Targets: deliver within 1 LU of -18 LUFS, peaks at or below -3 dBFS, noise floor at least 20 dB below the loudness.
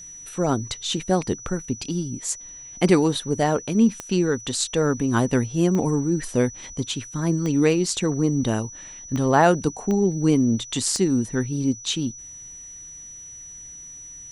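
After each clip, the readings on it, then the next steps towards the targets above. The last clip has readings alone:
clicks 6; steady tone 5900 Hz; tone level -38 dBFS; loudness -22.5 LUFS; peak -4.0 dBFS; loudness target -18.0 LUFS
-> de-click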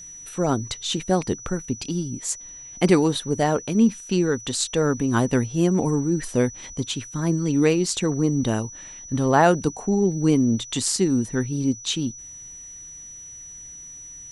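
clicks 0; steady tone 5900 Hz; tone level -38 dBFS
-> notch 5900 Hz, Q 30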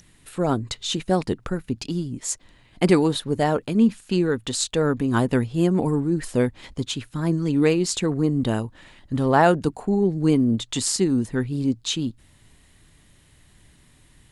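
steady tone none; loudness -23.0 LUFS; peak -4.0 dBFS; loudness target -18.0 LUFS
-> gain +5 dB; limiter -3 dBFS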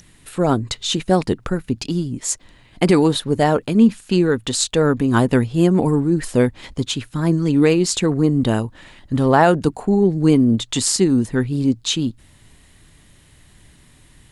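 loudness -18.0 LUFS; peak -3.0 dBFS; noise floor -51 dBFS

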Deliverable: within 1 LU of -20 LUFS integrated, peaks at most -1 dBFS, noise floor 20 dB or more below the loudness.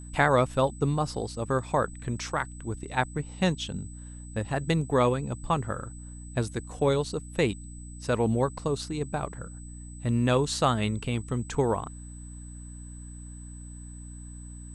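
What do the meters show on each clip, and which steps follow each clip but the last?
hum 60 Hz; harmonics up to 300 Hz; hum level -40 dBFS; steady tone 8000 Hz; tone level -49 dBFS; loudness -28.5 LUFS; peak -9.0 dBFS; loudness target -20.0 LUFS
-> de-hum 60 Hz, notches 5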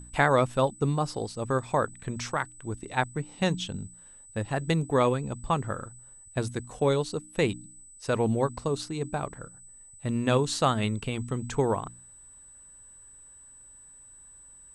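hum none; steady tone 8000 Hz; tone level -49 dBFS
-> notch 8000 Hz, Q 30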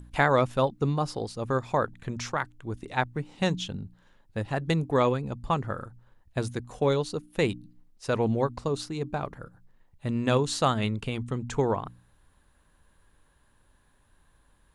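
steady tone none; loudness -29.0 LUFS; peak -9.0 dBFS; loudness target -20.0 LUFS
-> gain +9 dB; limiter -1 dBFS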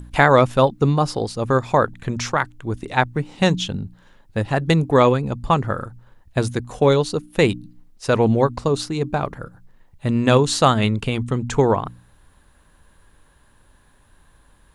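loudness -20.0 LUFS; peak -1.0 dBFS; noise floor -55 dBFS

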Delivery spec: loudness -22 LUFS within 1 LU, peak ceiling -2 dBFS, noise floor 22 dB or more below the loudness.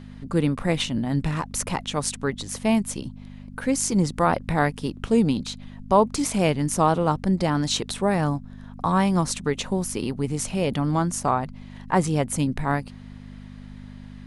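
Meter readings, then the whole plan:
hum 50 Hz; harmonics up to 250 Hz; hum level -41 dBFS; loudness -24.0 LUFS; peak -6.0 dBFS; loudness target -22.0 LUFS
-> de-hum 50 Hz, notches 5; gain +2 dB

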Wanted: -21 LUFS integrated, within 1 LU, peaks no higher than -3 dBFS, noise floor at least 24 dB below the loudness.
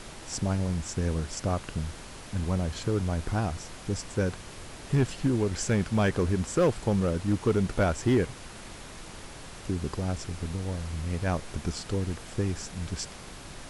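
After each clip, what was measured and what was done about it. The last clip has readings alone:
clipped 0.4%; flat tops at -17.0 dBFS; noise floor -44 dBFS; noise floor target -54 dBFS; loudness -29.5 LUFS; peak -17.0 dBFS; loudness target -21.0 LUFS
-> clip repair -17 dBFS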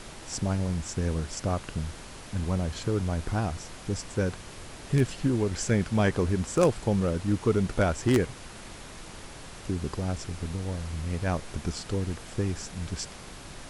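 clipped 0.0%; noise floor -44 dBFS; noise floor target -54 dBFS
-> noise print and reduce 10 dB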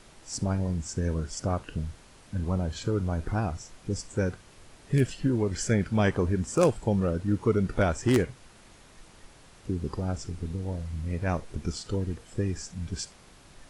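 noise floor -54 dBFS; loudness -29.5 LUFS; peak -8.0 dBFS; loudness target -21.0 LUFS
-> gain +8.5 dB; limiter -3 dBFS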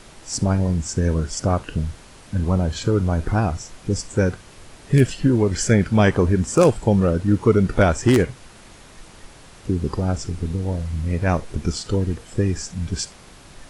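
loudness -21.0 LUFS; peak -3.0 dBFS; noise floor -45 dBFS

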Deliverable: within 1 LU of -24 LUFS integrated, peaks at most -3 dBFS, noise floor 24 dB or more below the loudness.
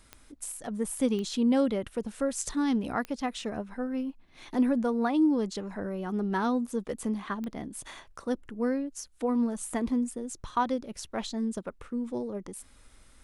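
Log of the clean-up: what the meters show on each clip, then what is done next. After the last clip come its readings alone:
clicks 4; loudness -31.0 LUFS; peak -14.0 dBFS; loudness target -24.0 LUFS
-> de-click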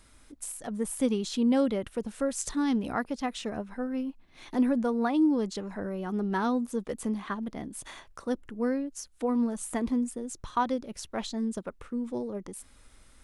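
clicks 0; loudness -31.0 LUFS; peak -14.0 dBFS; loudness target -24.0 LUFS
-> gain +7 dB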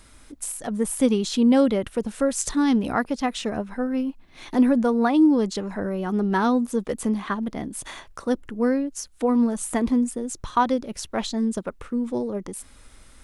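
loudness -24.0 LUFS; peak -7.0 dBFS; noise floor -50 dBFS

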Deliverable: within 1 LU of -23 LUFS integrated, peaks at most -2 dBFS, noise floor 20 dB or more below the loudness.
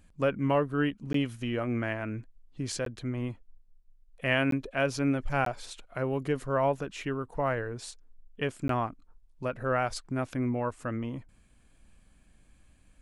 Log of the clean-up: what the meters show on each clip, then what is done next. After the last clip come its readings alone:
dropouts 5; longest dropout 13 ms; loudness -31.5 LUFS; peak -13.0 dBFS; loudness target -23.0 LUFS
-> interpolate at 1.13/2.85/4.51/5.45/8.68, 13 ms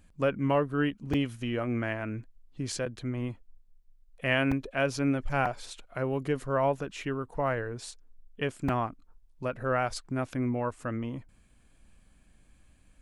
dropouts 0; loudness -31.0 LUFS; peak -13.0 dBFS; loudness target -23.0 LUFS
-> gain +8 dB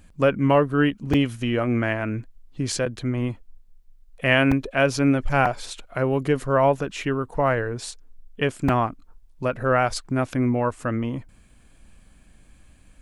loudness -23.0 LUFS; peak -5.0 dBFS; noise floor -53 dBFS

